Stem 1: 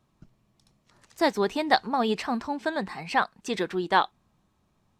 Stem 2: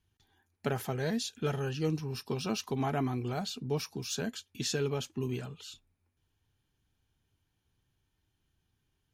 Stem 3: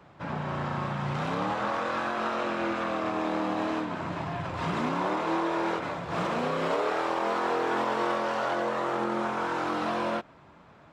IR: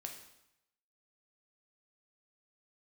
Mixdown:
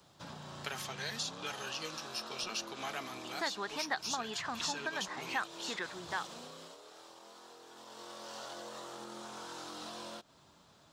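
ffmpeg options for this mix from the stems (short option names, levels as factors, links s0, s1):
-filter_complex "[0:a]equalizer=f=1500:w=1:g=10,adelay=2200,volume=0.299[s0];[1:a]crystalizer=i=4:c=0,bandpass=f=3100:t=q:w=0.5:csg=0,volume=0.841,asplit=2[s1][s2];[2:a]acompressor=threshold=0.02:ratio=6,aexciter=amount=9.1:drive=3.2:freq=3300,volume=0.891,afade=t=out:st=6.2:d=0.58:silence=0.354813,afade=t=in:st=7.74:d=0.66:silence=0.334965[s3];[s2]apad=whole_len=317511[s4];[s0][s4]sidechaingate=range=0.447:threshold=0.00112:ratio=16:detection=peak[s5];[s5][s1][s3]amix=inputs=3:normalize=0,acrossover=split=730|1900|7700[s6][s7][s8][s9];[s6]acompressor=threshold=0.00631:ratio=4[s10];[s7]acompressor=threshold=0.0112:ratio=4[s11];[s8]acompressor=threshold=0.0126:ratio=4[s12];[s9]acompressor=threshold=0.001:ratio=4[s13];[s10][s11][s12][s13]amix=inputs=4:normalize=0"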